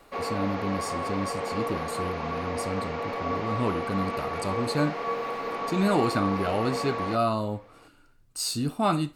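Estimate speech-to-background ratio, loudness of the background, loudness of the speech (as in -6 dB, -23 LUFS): 1.5 dB, -31.5 LUFS, -30.0 LUFS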